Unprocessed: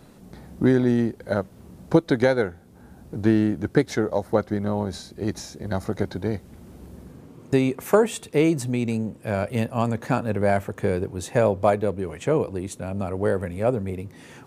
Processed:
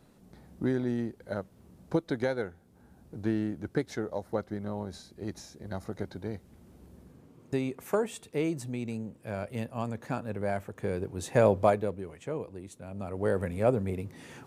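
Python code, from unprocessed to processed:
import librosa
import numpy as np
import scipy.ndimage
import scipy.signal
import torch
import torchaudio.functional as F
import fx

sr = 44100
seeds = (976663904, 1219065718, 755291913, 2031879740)

y = fx.gain(x, sr, db=fx.line((10.73, -10.5), (11.53, -1.5), (12.2, -13.5), (12.79, -13.5), (13.44, -3.0)))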